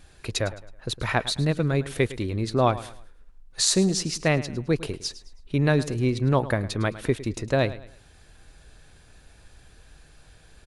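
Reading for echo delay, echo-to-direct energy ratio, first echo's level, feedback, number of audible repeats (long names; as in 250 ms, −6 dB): 107 ms, −15.5 dB, −16.0 dB, 34%, 3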